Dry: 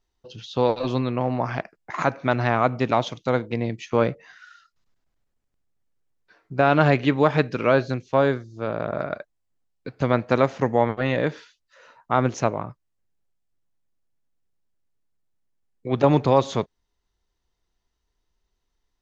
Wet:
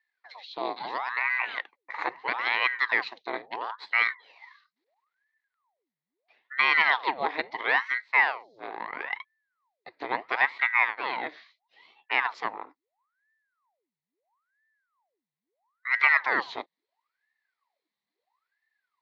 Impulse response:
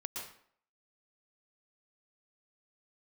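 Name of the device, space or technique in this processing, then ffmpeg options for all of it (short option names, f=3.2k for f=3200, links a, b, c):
voice changer toy: -af "aeval=exprs='val(0)*sin(2*PI*960*n/s+960*0.85/0.75*sin(2*PI*0.75*n/s))':c=same,highpass=510,equalizer=f=590:t=q:w=4:g=-5,equalizer=f=960:t=q:w=4:g=4,equalizer=f=1.4k:t=q:w=4:g=-7,equalizer=f=2k:t=q:w=4:g=10,equalizer=f=2.9k:t=q:w=4:g=-3,equalizer=f=4.1k:t=q:w=4:g=8,lowpass=f=4.4k:w=0.5412,lowpass=f=4.4k:w=1.3066,volume=-4.5dB"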